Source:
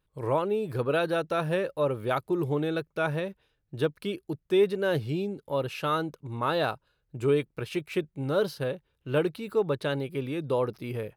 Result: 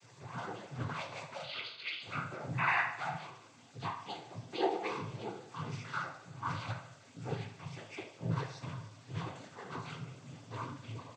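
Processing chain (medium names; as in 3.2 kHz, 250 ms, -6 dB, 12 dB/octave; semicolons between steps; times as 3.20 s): comb filter that takes the minimum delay 0.88 ms; tremolo saw down 2.7 Hz, depth 45%; 10.00–10.47 s: compressor with a negative ratio -47 dBFS, ratio -1; added noise pink -50 dBFS; 1.43–2.01 s: frequency inversion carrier 3.7 kHz; 2.57–2.81 s: painted sound noise 690–2500 Hz -22 dBFS; inharmonic resonator 130 Hz, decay 0.58 s, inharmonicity 0.002; noise-vocoded speech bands 16; feedback delay 75 ms, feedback 53%, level -14 dB; trim +6.5 dB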